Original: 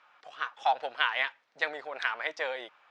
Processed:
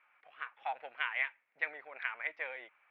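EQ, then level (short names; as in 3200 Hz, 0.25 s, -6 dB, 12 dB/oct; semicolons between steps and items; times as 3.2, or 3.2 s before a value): ladder low-pass 2500 Hz, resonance 65%; -1.5 dB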